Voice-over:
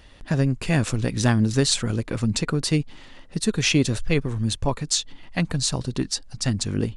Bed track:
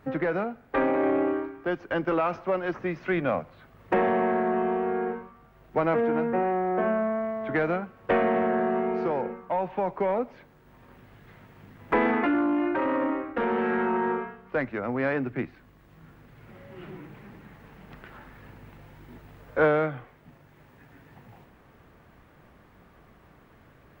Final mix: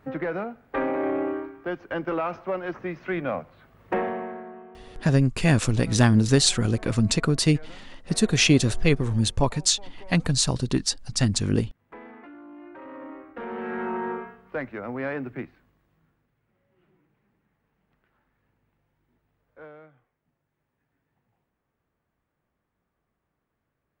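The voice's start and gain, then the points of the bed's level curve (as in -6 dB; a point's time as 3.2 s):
4.75 s, +1.5 dB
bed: 3.96 s -2 dB
4.72 s -21.5 dB
12.4 s -21.5 dB
13.88 s -3.5 dB
15.38 s -3.5 dB
16.43 s -24 dB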